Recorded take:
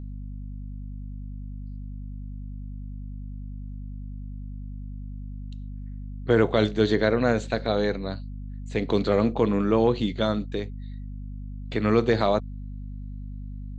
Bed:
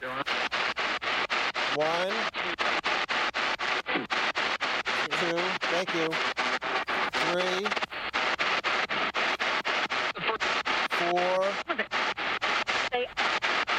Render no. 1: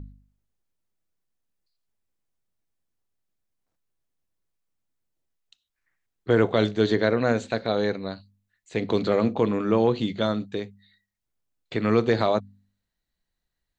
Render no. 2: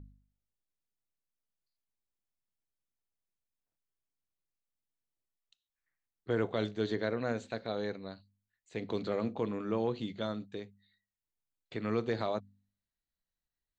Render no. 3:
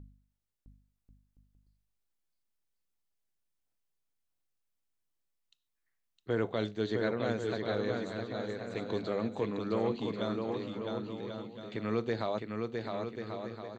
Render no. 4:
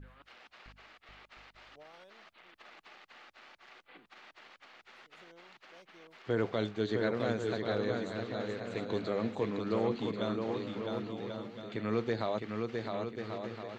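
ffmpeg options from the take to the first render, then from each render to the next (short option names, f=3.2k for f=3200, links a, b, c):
-af "bandreject=f=50:t=h:w=4,bandreject=f=100:t=h:w=4,bandreject=f=150:t=h:w=4,bandreject=f=200:t=h:w=4,bandreject=f=250:t=h:w=4"
-af "volume=-11.5dB"
-af "aecho=1:1:660|1089|1368|1549|1667:0.631|0.398|0.251|0.158|0.1"
-filter_complex "[1:a]volume=-27.5dB[a];[0:a][a]amix=inputs=2:normalize=0"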